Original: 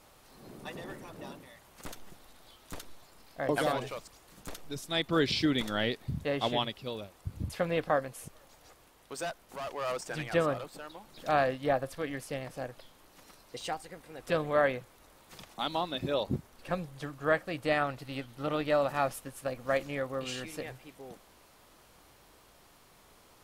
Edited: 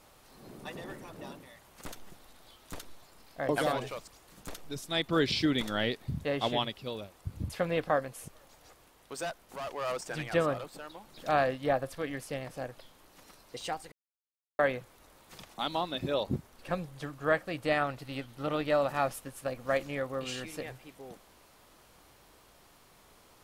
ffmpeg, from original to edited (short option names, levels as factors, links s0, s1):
-filter_complex "[0:a]asplit=3[s0][s1][s2];[s0]atrim=end=13.92,asetpts=PTS-STARTPTS,afade=t=out:st=13.916:d=0.004:c=hsin[s3];[s1]atrim=start=13.92:end=14.59,asetpts=PTS-STARTPTS,volume=0[s4];[s2]atrim=start=14.59,asetpts=PTS-STARTPTS,afade=t=in:d=0.004:c=hsin[s5];[s3][s4][s5]concat=n=3:v=0:a=1"